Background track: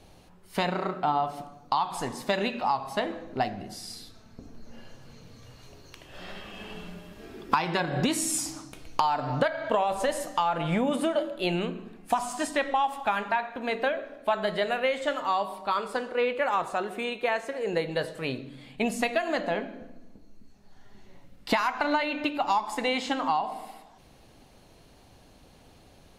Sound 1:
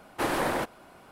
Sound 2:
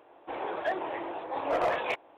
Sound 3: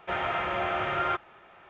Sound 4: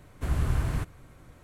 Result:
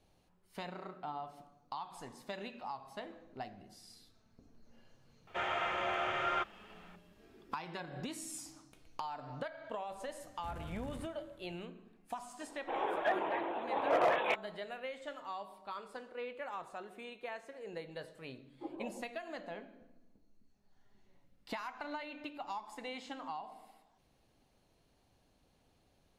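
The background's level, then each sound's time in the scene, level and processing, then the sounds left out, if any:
background track -16.5 dB
5.27 s: add 3 -6 dB + tone controls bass -7 dB, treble +11 dB
10.22 s: add 4 -13 dB + saturation -31 dBFS
12.40 s: add 2 -1.5 dB + high-pass 130 Hz
18.41 s: add 1 -15.5 dB + spectral contrast expander 4:1

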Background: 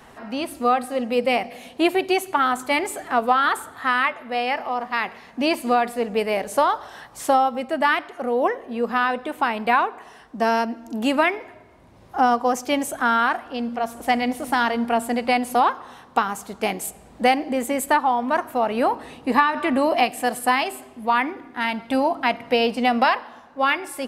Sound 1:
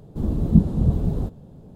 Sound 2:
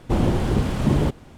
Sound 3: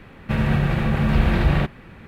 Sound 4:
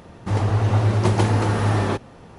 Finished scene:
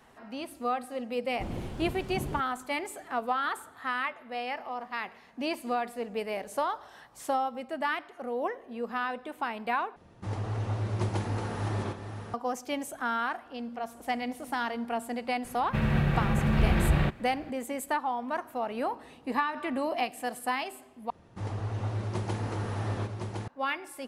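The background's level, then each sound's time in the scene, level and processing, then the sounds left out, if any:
background -11 dB
1.30 s: add 2 -16.5 dB
9.96 s: replace with 4 -13 dB + chunks repeated in reverse 486 ms, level -7.5 dB
15.44 s: add 3 -6 dB
21.10 s: replace with 4 -14 dB + delay 1061 ms -4 dB
not used: 1

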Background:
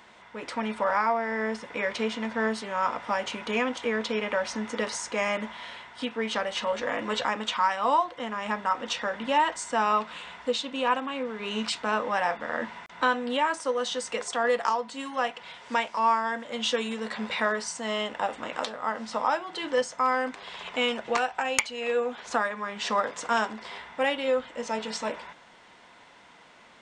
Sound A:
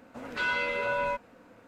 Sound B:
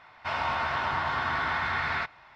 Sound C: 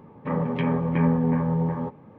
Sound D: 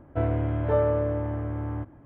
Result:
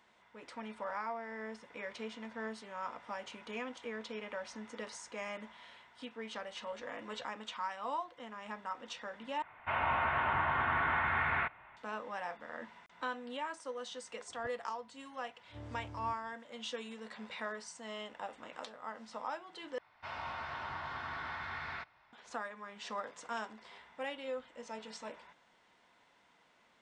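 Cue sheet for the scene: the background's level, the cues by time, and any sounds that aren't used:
background -14.5 dB
9.42 s: replace with B -3 dB + steep low-pass 2.9 kHz
14.29 s: add D -17 dB + inverted gate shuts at -20 dBFS, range -38 dB
19.78 s: replace with B -13 dB
not used: A, C

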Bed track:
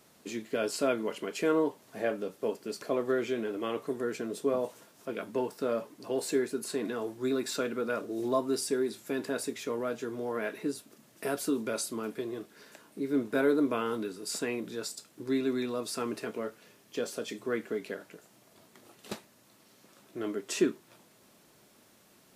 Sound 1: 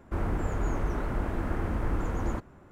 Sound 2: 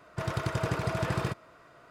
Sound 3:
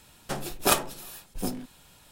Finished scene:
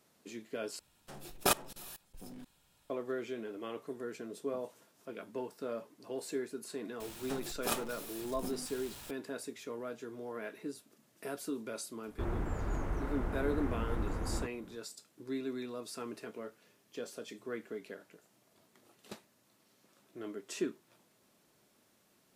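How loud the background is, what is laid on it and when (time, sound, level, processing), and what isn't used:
bed track -8.5 dB
0.79 s: replace with 3 -4 dB + level held to a coarse grid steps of 22 dB
7.00 s: add 3 -13.5 dB + jump at every zero crossing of -31 dBFS
12.07 s: add 1 -6.5 dB
not used: 2

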